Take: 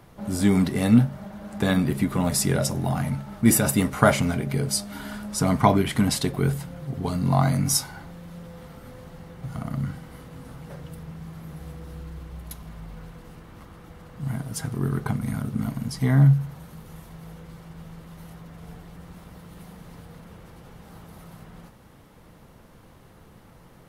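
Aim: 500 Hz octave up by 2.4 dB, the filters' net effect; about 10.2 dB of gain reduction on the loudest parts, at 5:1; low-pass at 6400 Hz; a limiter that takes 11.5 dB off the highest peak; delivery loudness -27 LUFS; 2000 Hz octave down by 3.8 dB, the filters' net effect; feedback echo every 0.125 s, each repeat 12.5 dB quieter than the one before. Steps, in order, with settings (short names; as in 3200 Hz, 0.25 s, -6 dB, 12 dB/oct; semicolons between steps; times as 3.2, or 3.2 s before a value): LPF 6400 Hz; bell 500 Hz +3.5 dB; bell 2000 Hz -5.5 dB; compressor 5:1, threshold -23 dBFS; limiter -20.5 dBFS; feedback echo 0.125 s, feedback 24%, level -12.5 dB; gain +6 dB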